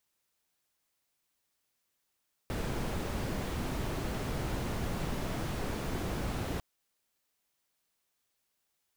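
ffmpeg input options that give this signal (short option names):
-f lavfi -i "anoisesrc=c=brown:a=0.0933:d=4.1:r=44100:seed=1"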